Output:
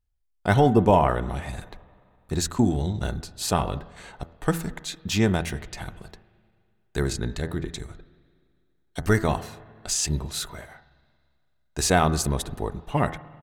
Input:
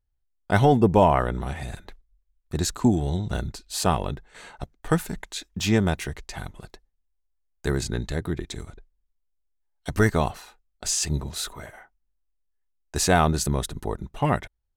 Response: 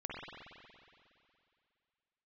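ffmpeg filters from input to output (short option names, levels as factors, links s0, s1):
-filter_complex "[0:a]bandreject=f=82.84:t=h:w=4,bandreject=f=165.68:t=h:w=4,bandreject=f=248.52:t=h:w=4,bandreject=f=331.36:t=h:w=4,bandreject=f=414.2:t=h:w=4,bandreject=f=497.04:t=h:w=4,bandreject=f=579.88:t=h:w=4,bandreject=f=662.72:t=h:w=4,bandreject=f=745.56:t=h:w=4,bandreject=f=828.4:t=h:w=4,bandreject=f=911.24:t=h:w=4,bandreject=f=994.08:t=h:w=4,bandreject=f=1076.92:t=h:w=4,bandreject=f=1159.76:t=h:w=4,bandreject=f=1242.6:t=h:w=4,bandreject=f=1325.44:t=h:w=4,bandreject=f=1408.28:t=h:w=4,bandreject=f=1491.12:t=h:w=4,bandreject=f=1573.96:t=h:w=4,bandreject=f=1656.8:t=h:w=4,bandreject=f=1739.64:t=h:w=4,bandreject=f=1822.48:t=h:w=4,bandreject=f=1905.32:t=h:w=4,bandreject=f=1988.16:t=h:w=4,asplit=2[s0][s1];[1:a]atrim=start_sample=2205,adelay=12[s2];[s1][s2]afir=irnorm=-1:irlink=0,volume=0.106[s3];[s0][s3]amix=inputs=2:normalize=0,atempo=1.1"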